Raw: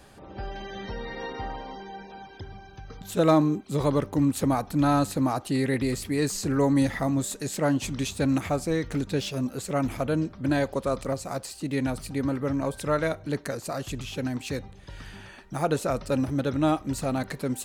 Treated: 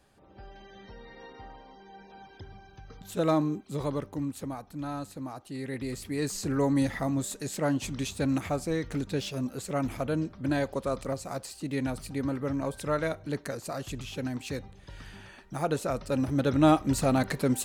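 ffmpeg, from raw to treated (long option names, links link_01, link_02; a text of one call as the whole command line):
ffmpeg -i in.wav -af "volume=11dB,afade=type=in:start_time=1.76:duration=0.51:silence=0.446684,afade=type=out:start_time=3.58:duration=0.99:silence=0.398107,afade=type=in:start_time=5.48:duration=0.96:silence=0.316228,afade=type=in:start_time=16.11:duration=0.6:silence=0.473151" out.wav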